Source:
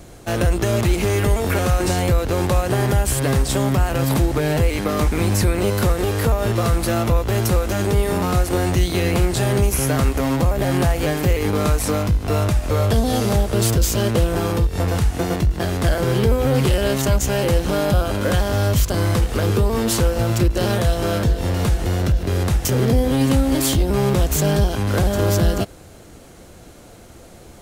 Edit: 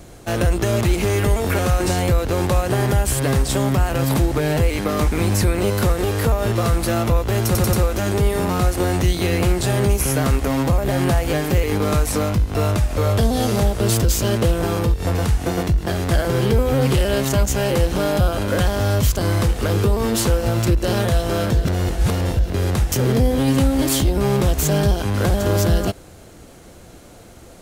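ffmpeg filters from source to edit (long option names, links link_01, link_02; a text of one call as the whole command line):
ffmpeg -i in.wav -filter_complex "[0:a]asplit=6[link_01][link_02][link_03][link_04][link_05][link_06];[link_01]atrim=end=7.552[link_07];[link_02]atrim=start=7.458:end=7.552[link_08];[link_03]atrim=start=7.458:end=7.552[link_09];[link_04]atrim=start=7.458:end=21.382[link_10];[link_05]atrim=start=21.378:end=22.102,asetpts=PTS-STARTPTS,areverse[link_11];[link_06]atrim=start=22.098[link_12];[link_07][link_08]acrossfade=duration=0.004:curve1=hsin:curve2=hsin[link_13];[link_13][link_09]acrossfade=duration=0.004:curve1=hsin:curve2=hsin[link_14];[link_14][link_10]acrossfade=duration=0.004:curve1=hsin:curve2=hsin[link_15];[link_15][link_11]acrossfade=duration=0.004:curve1=hsin:curve2=hsin[link_16];[link_16][link_12]acrossfade=duration=0.004:curve1=hsin:curve2=hsin" out.wav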